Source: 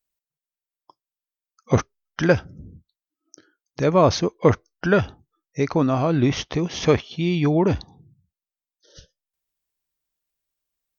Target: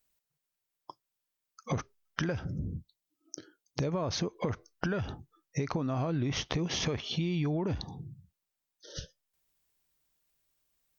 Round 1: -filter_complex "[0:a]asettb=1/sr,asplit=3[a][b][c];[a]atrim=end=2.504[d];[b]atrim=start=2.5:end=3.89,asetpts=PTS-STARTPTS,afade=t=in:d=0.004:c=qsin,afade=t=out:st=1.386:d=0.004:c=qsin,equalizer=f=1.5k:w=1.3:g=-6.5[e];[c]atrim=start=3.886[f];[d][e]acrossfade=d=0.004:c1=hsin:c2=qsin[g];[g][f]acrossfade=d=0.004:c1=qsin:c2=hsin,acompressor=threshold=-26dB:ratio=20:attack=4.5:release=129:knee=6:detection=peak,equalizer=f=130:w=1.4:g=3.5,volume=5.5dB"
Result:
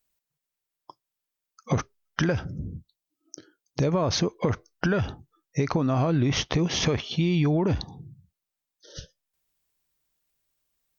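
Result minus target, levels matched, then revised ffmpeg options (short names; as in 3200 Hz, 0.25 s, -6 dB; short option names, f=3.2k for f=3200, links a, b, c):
compressor: peak gain reduction -8 dB
-filter_complex "[0:a]asettb=1/sr,asplit=3[a][b][c];[a]atrim=end=2.504[d];[b]atrim=start=2.5:end=3.89,asetpts=PTS-STARTPTS,afade=t=in:d=0.004:c=qsin,afade=t=out:st=1.386:d=0.004:c=qsin,equalizer=f=1.5k:w=1.3:g=-6.5[e];[c]atrim=start=3.886[f];[d][e]acrossfade=d=0.004:c1=hsin:c2=qsin[g];[g][f]acrossfade=d=0.004:c1=qsin:c2=hsin,acompressor=threshold=-34.5dB:ratio=20:attack=4.5:release=129:knee=6:detection=peak,equalizer=f=130:w=1.4:g=3.5,volume=5.5dB"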